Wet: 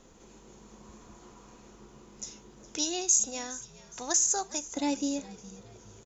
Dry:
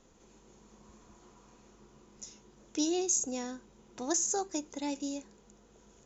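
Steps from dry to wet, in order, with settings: 2.77–4.77 s: peaking EQ 280 Hz -12 dB 2.2 oct; frequency-shifting echo 414 ms, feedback 43%, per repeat -88 Hz, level -18 dB; trim +6 dB

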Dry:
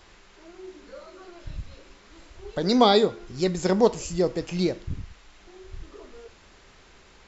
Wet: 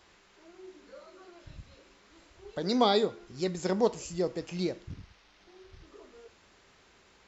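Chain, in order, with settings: 4.90–5.87 s: CVSD coder 32 kbps; high-pass 100 Hz 6 dB/octave; trim -6.5 dB

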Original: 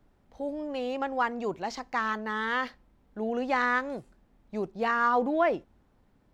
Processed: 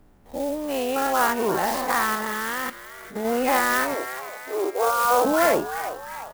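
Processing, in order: every event in the spectrogram widened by 120 ms; in parallel at 0 dB: peak limiter -19 dBFS, peak gain reduction 9.5 dB; 3.94–5.25 s: on the sum: brick-wall FIR band-pass 260–1600 Hz; on a send: frequency-shifting echo 348 ms, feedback 49%, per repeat +130 Hz, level -11.5 dB; 2.15–3.25 s: on the sum: level held to a coarse grid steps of 13 dB; sampling jitter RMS 0.043 ms; trim -2 dB

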